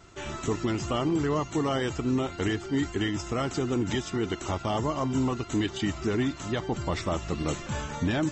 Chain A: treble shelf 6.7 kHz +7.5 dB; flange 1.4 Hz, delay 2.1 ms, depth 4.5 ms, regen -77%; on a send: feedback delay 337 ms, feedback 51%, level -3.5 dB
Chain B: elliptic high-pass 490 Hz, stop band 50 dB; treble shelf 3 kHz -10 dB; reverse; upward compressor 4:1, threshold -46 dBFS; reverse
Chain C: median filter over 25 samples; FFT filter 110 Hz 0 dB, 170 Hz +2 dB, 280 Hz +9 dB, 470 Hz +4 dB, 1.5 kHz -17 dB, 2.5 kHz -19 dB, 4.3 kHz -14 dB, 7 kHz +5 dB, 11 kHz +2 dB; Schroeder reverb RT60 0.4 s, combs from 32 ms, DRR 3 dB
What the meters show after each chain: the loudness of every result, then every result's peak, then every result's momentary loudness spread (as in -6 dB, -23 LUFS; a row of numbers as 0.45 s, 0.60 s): -31.5 LUFS, -37.0 LUFS, -23.0 LUFS; -17.5 dBFS, -19.5 dBFS, -7.5 dBFS; 4 LU, 7 LU, 7 LU